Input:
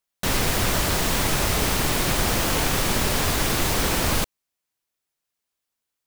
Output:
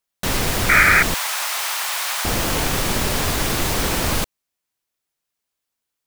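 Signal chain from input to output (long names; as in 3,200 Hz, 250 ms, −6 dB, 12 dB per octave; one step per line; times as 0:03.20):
0:00.69–0:01.03: sound drawn into the spectrogram noise 1,200–2,500 Hz −15 dBFS
0:01.14–0:02.25: high-pass filter 810 Hz 24 dB per octave
level +1.5 dB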